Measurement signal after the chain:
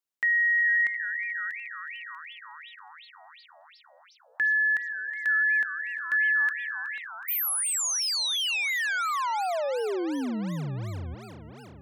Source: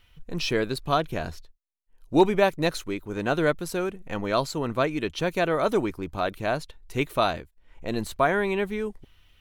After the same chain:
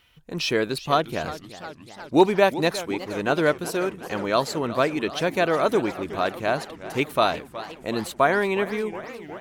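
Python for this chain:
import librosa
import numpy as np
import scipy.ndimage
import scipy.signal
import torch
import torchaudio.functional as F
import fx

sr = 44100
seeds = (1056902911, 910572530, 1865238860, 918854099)

y = fx.highpass(x, sr, hz=180.0, slope=6)
y = fx.echo_warbled(y, sr, ms=363, feedback_pct=72, rate_hz=2.8, cents=210, wet_db=-15)
y = y * 10.0 ** (3.0 / 20.0)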